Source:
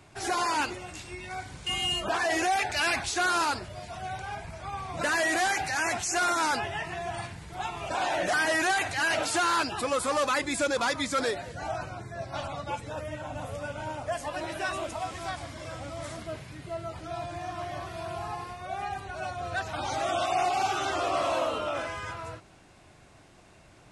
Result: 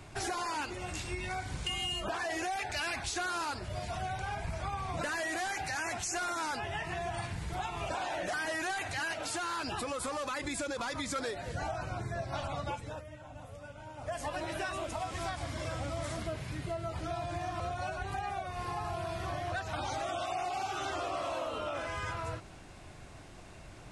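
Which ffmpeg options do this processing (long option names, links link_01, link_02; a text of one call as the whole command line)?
ffmpeg -i in.wav -filter_complex "[0:a]asettb=1/sr,asplit=3[link_01][link_02][link_03];[link_01]atrim=end=9.134[link_04];[link_02]atrim=start=9.13:end=11.16,asetpts=PTS-STARTPTS,afade=type=in:duration=0.004:curve=qsin,afade=type=out:start_time=2.026:duration=0.004:curve=qsin,acompressor=threshold=-30dB:ratio=4:attack=3.2:release=140:knee=1:detection=peak[link_05];[link_03]atrim=start=11.156[link_06];[link_04][link_05]acrossfade=duration=0.004:curve1=hsin:curve2=qsin[link_07];[link_07][link_06]acrossfade=duration=0.004:curve1=qsin:curve2=hsin,asplit=5[link_08][link_09][link_10][link_11][link_12];[link_08]atrim=end=13.03,asetpts=PTS-STARTPTS,afade=type=out:start_time=12.66:duration=0.37:silence=0.16788[link_13];[link_09]atrim=start=13.03:end=13.95,asetpts=PTS-STARTPTS,volume=-15.5dB[link_14];[link_10]atrim=start=13.95:end=17.602,asetpts=PTS-STARTPTS,afade=type=in:duration=0.37:silence=0.16788[link_15];[link_11]atrim=start=17.598:end=19.522,asetpts=PTS-STARTPTS,areverse[link_16];[link_12]atrim=start=19.518[link_17];[link_13][link_14][link_15]concat=n=3:v=0:a=1[link_18];[link_18][link_16]acrossfade=duration=0.004:curve1=hsin:curve2=hsin[link_19];[link_19][link_17]acrossfade=duration=0.004:curve1=hsin:curve2=hsin,acompressor=threshold=-37dB:ratio=6,lowshelf=frequency=67:gain=10,volume=3dB" out.wav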